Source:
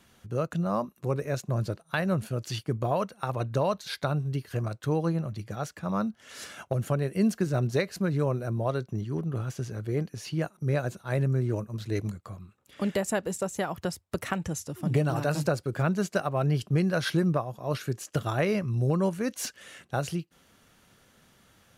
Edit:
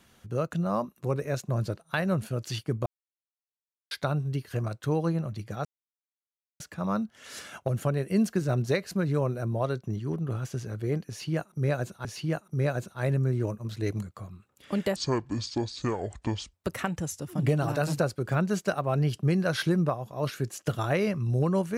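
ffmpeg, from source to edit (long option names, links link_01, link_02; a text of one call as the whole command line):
ffmpeg -i in.wav -filter_complex "[0:a]asplit=7[link_01][link_02][link_03][link_04][link_05][link_06][link_07];[link_01]atrim=end=2.86,asetpts=PTS-STARTPTS,afade=type=out:start_time=2.856:duration=0.004:curve=hsin[link_08];[link_02]atrim=start=2.86:end=3.91,asetpts=PTS-STARTPTS,volume=0[link_09];[link_03]atrim=start=3.91:end=5.65,asetpts=PTS-STARTPTS,afade=type=in:duration=0.004:curve=hsin,afade=type=out:start_time=1.736:duration=0.004:curve=hsin,apad=pad_dur=0.95[link_10];[link_04]atrim=start=5.65:end=11.102,asetpts=PTS-STARTPTS,afade=type=in:duration=0.004:curve=hsin[link_11];[link_05]atrim=start=10.138:end=13.054[link_12];[link_06]atrim=start=13.05:end=14.01,asetpts=PTS-STARTPTS,asetrate=26901,aresample=44100,atrim=end_sample=69403,asetpts=PTS-STARTPTS[link_13];[link_07]atrim=start=14.006[link_14];[link_08][link_09][link_10][link_11]concat=n=4:v=0:a=1[link_15];[link_15][link_12]acrossfade=duration=0.004:curve1=hsin:curve2=hsin[link_16];[link_16][link_13]acrossfade=duration=0.004:curve1=hsin:curve2=hsin[link_17];[link_17][link_14]acrossfade=duration=0.004:curve1=hsin:curve2=hsin" out.wav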